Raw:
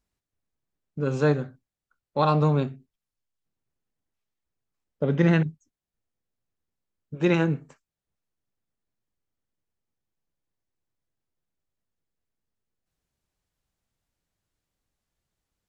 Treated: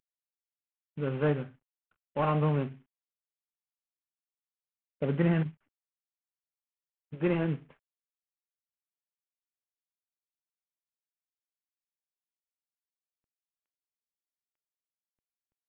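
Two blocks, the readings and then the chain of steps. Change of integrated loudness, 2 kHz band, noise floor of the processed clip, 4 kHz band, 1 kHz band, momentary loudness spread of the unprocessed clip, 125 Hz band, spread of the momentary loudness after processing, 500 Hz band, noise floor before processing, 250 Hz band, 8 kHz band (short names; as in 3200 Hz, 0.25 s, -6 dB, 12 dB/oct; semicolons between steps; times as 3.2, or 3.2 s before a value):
-6.0 dB, -7.5 dB, under -85 dBFS, -9.5 dB, -6.5 dB, 13 LU, -5.5 dB, 13 LU, -6.0 dB, under -85 dBFS, -6.0 dB, n/a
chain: CVSD 16 kbps; gain -5 dB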